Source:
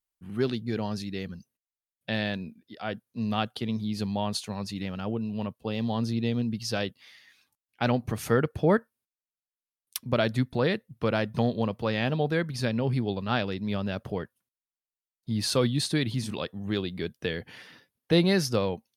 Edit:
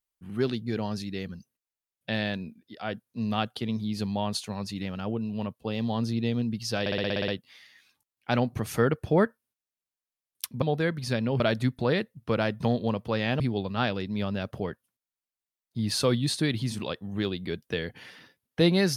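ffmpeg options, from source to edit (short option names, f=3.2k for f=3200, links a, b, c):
-filter_complex "[0:a]asplit=12[a][b][c][d][e][f][g][h][i][j][k][l];[a]atrim=end=6.862[m];[b]atrim=start=6.798:end=6.862[n];[c]atrim=start=6.798:end=6.862[o];[d]atrim=start=6.798:end=6.862[p];[e]atrim=start=6.798:end=6.862[q];[f]atrim=start=6.798:end=6.862[r];[g]atrim=start=6.798:end=6.862[s];[h]atrim=start=6.798:end=6.862[t];[i]atrim=start=6.798:end=10.142[u];[j]atrim=start=12.138:end=12.922[v];[k]atrim=start=10.138:end=12.142[w];[l]atrim=start=12.918[x];[m][n]acrossfade=d=0.004:c1=hsin:c2=hsin[y];[y][o]acrossfade=d=0.004:c1=hsin:c2=hsin[z];[z][p]acrossfade=d=0.004:c1=hsin:c2=hsin[aa];[aa][q]acrossfade=d=0.004:c1=hsin:c2=hsin[ab];[ab][r]acrossfade=d=0.004:c1=hsin:c2=hsin[ac];[ac][s]acrossfade=d=0.004:c1=hsin:c2=hsin[ad];[ad][t]acrossfade=d=0.004:c1=hsin:c2=hsin[ae];[ae][u]acrossfade=d=0.004:c1=hsin:c2=hsin[af];[af][v]acrossfade=d=0.004:c1=hsin:c2=hsin[ag];[ag][w]acrossfade=d=0.004:c1=hsin:c2=hsin[ah];[ah][x]acrossfade=d=0.004:c1=hsin:c2=hsin"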